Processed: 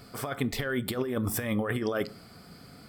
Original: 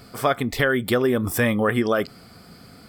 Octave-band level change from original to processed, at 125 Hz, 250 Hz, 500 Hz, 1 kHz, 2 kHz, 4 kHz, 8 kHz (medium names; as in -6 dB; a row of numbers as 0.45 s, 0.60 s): -6.5 dB, -7.5 dB, -10.5 dB, -12.0 dB, -11.0 dB, -7.5 dB, -4.0 dB